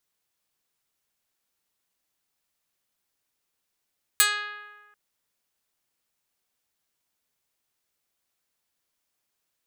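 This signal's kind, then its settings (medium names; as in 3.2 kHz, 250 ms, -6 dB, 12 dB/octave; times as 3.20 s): plucked string G#4, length 0.74 s, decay 1.47 s, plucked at 0.08, medium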